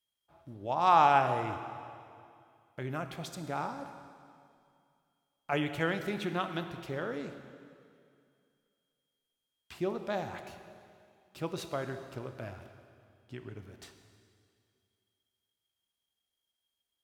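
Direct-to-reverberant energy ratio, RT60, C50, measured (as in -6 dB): 7.5 dB, 2.4 s, 9.0 dB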